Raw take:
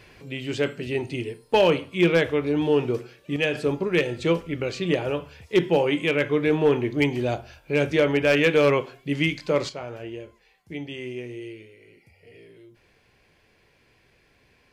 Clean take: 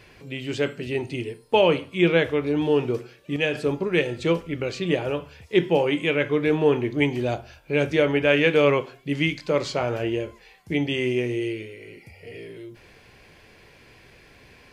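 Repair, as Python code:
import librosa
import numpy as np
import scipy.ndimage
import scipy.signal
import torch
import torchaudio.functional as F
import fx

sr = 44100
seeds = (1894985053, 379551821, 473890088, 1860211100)

y = fx.fix_declip(x, sr, threshold_db=-11.0)
y = fx.gain(y, sr, db=fx.steps((0.0, 0.0), (9.69, 10.0)))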